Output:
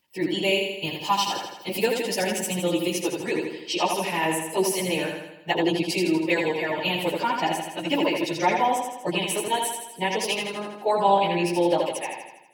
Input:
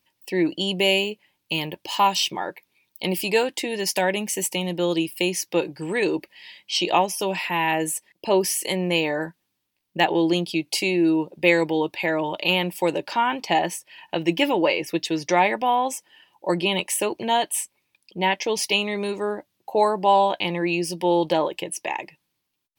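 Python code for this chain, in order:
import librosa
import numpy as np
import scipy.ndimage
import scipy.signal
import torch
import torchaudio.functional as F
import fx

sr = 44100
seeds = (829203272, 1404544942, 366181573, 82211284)

p1 = fx.stretch_vocoder_free(x, sr, factor=0.55)
y = p1 + fx.echo_feedback(p1, sr, ms=81, feedback_pct=55, wet_db=-4.5, dry=0)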